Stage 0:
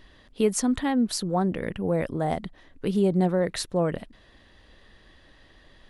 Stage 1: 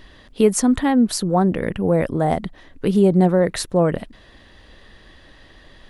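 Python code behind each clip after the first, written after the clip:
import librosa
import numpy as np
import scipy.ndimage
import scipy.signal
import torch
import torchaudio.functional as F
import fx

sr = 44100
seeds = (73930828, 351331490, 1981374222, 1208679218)

y = fx.dynamic_eq(x, sr, hz=3900.0, q=0.72, threshold_db=-43.0, ratio=4.0, max_db=-4)
y = F.gain(torch.from_numpy(y), 7.5).numpy()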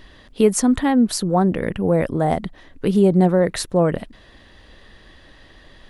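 y = x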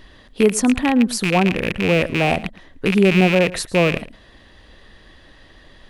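y = fx.rattle_buzz(x, sr, strikes_db=-25.0, level_db=-10.0)
y = y + 10.0 ** (-18.5 / 20.0) * np.pad(y, (int(112 * sr / 1000.0), 0))[:len(y)]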